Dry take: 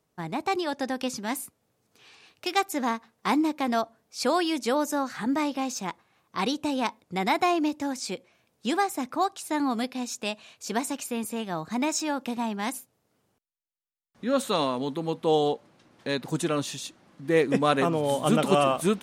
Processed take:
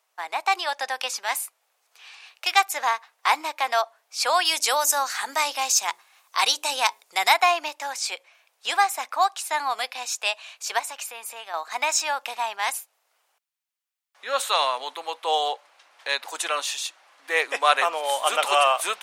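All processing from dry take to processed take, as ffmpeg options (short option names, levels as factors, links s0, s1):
-filter_complex "[0:a]asettb=1/sr,asplit=3[s0][s1][s2];[s0]atrim=end=4.454[s3];[s1]atrim=start=4.45:end=7.34,asetpts=PTS-STARTPTS,afade=t=in:d=0.004:c=qsin,afade=t=out:st=2.886:d=0.004:c=qsin,bass=f=250:g=10,treble=f=4000:g=10,bandreject=f=60:t=h:w=6,bandreject=f=120:t=h:w=6,bandreject=f=180:t=h:w=6,bandreject=f=240:t=h:w=6,bandreject=f=300:t=h:w=6,bandreject=f=360:t=h:w=6,bandreject=f=420:t=h:w=6,asoftclip=type=hard:threshold=0.266[s4];[s2]atrim=start=7.336[s5];[s3][s4]acrossfade=d=0.004:c1=hsin:c2=qsin[s6];[s6][s5]acrossfade=d=0.004:c1=qsin:c2=hsin,asettb=1/sr,asplit=3[s7][s8][s9];[s7]atrim=end=10.794[s10];[s8]atrim=start=10.79:end=11.54,asetpts=PTS-STARTPTS,afade=t=in:d=0.004:c=qsin,afade=t=out:st=0.746:d=0.004:c=qsin,lowpass=f=2100:p=1,aemphasis=mode=production:type=50kf,acompressor=threshold=0.0158:ratio=2:attack=3.2:release=140:knee=1:detection=peak[s11];[s9]atrim=start=11.536[s12];[s10][s11]acrossfade=d=0.004:c1=hsin:c2=qsin[s13];[s13][s12]acrossfade=d=0.004:c1=qsin:c2=hsin,highpass=f=700:w=0.5412,highpass=f=700:w=1.3066,equalizer=f=2500:w=1.8:g=3,volume=2.11"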